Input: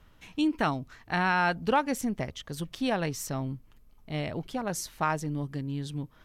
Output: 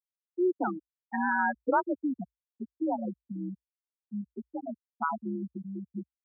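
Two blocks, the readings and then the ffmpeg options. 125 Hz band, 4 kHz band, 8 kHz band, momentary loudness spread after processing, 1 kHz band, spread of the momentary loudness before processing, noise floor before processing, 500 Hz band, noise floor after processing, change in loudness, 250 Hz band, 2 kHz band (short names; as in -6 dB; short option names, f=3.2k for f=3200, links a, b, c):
-12.0 dB, under -40 dB, under -40 dB, 15 LU, -2.0 dB, 12 LU, -58 dBFS, -1.0 dB, under -85 dBFS, -2.5 dB, -1.5 dB, -3.0 dB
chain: -af "afftfilt=real='re*gte(hypot(re,im),0.2)':imag='im*gte(hypot(re,im),0.2)':win_size=1024:overlap=0.75,afreqshift=56"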